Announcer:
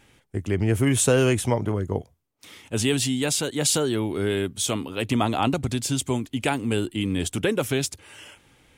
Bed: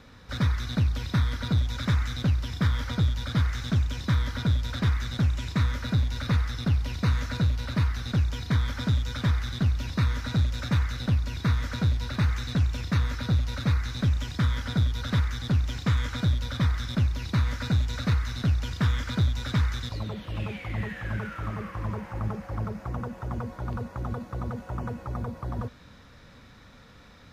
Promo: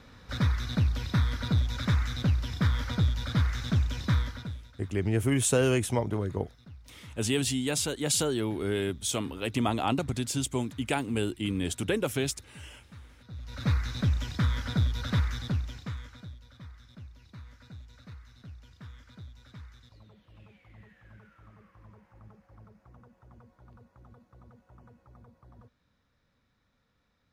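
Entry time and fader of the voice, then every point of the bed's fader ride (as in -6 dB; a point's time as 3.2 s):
4.45 s, -5.0 dB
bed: 4.18 s -1.5 dB
4.78 s -24.5 dB
13.24 s -24.5 dB
13.67 s -2 dB
15.36 s -2 dB
16.4 s -22.5 dB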